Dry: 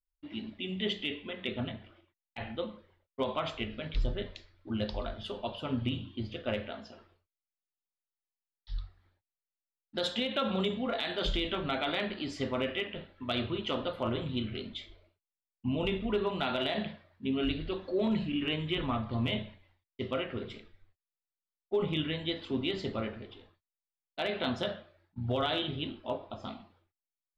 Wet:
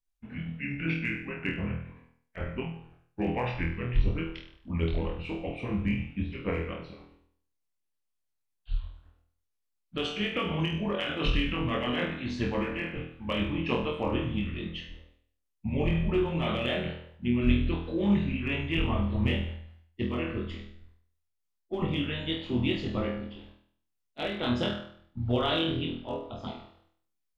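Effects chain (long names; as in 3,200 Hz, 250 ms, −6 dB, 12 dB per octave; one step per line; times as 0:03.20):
pitch glide at a constant tempo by −5 semitones ending unshifted
low-shelf EQ 200 Hz +9.5 dB
on a send: flutter between parallel walls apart 4.2 metres, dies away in 0.57 s
on the sum: harmonic and percussive parts rebalanced harmonic −7 dB
level +3 dB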